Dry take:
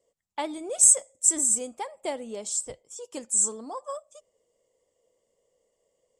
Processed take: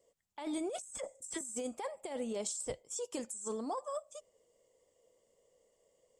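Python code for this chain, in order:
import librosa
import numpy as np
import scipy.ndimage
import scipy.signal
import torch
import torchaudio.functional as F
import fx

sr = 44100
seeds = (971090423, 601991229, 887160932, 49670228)

y = fx.dynamic_eq(x, sr, hz=8100.0, q=0.96, threshold_db=-29.0, ratio=4.0, max_db=-4)
y = fx.dispersion(y, sr, late='lows', ms=55.0, hz=2100.0, at=(0.82, 1.41))
y = fx.over_compress(y, sr, threshold_db=-36.0, ratio=-1.0)
y = F.gain(torch.from_numpy(y), -4.5).numpy()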